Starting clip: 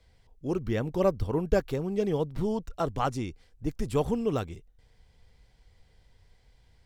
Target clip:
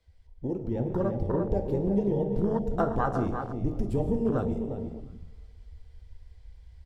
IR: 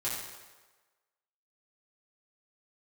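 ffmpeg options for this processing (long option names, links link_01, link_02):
-filter_complex "[0:a]acompressor=threshold=-36dB:ratio=16,asplit=2[link_01][link_02];[link_02]adelay=353,lowpass=frequency=2400:poles=1,volume=-6.5dB,asplit=2[link_03][link_04];[link_04]adelay=353,lowpass=frequency=2400:poles=1,volume=0.33,asplit=2[link_05][link_06];[link_06]adelay=353,lowpass=frequency=2400:poles=1,volume=0.33,asplit=2[link_07][link_08];[link_08]adelay=353,lowpass=frequency=2400:poles=1,volume=0.33[link_09];[link_01][link_03][link_05][link_07][link_09]amix=inputs=5:normalize=0,asplit=2[link_10][link_11];[1:a]atrim=start_sample=2205,asetrate=25137,aresample=44100[link_12];[link_11][link_12]afir=irnorm=-1:irlink=0,volume=-13.5dB[link_13];[link_10][link_13]amix=inputs=2:normalize=0,afwtdn=0.00891,dynaudnorm=framelen=580:gausssize=3:maxgain=5dB,bandreject=frequency=52.59:width_type=h:width=4,bandreject=frequency=105.18:width_type=h:width=4,bandreject=frequency=157.77:width_type=h:width=4,bandreject=frequency=210.36:width_type=h:width=4,bandreject=frequency=262.95:width_type=h:width=4,bandreject=frequency=315.54:width_type=h:width=4,bandreject=frequency=368.13:width_type=h:width=4,bandreject=frequency=420.72:width_type=h:width=4,bandreject=frequency=473.31:width_type=h:width=4,bandreject=frequency=525.9:width_type=h:width=4,bandreject=frequency=578.49:width_type=h:width=4,bandreject=frequency=631.08:width_type=h:width=4,bandreject=frequency=683.67:width_type=h:width=4,bandreject=frequency=736.26:width_type=h:width=4,bandreject=frequency=788.85:width_type=h:width=4,bandreject=frequency=841.44:width_type=h:width=4,volume=6.5dB"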